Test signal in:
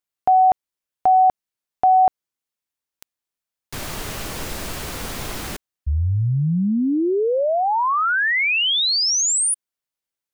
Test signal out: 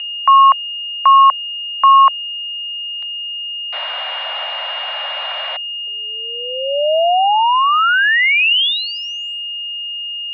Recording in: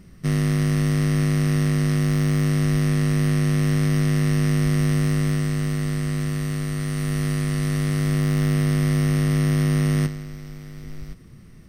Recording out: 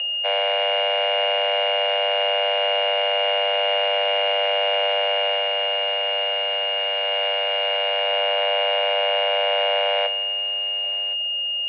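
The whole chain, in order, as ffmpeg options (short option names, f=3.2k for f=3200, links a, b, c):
-af "aeval=exprs='val(0)+0.0398*sin(2*PI*2500*n/s)':c=same,highpass=f=250:t=q:w=0.5412,highpass=f=250:t=q:w=1.307,lowpass=f=3.1k:t=q:w=0.5176,lowpass=f=3.1k:t=q:w=0.7071,lowpass=f=3.1k:t=q:w=1.932,afreqshift=340,volume=6dB"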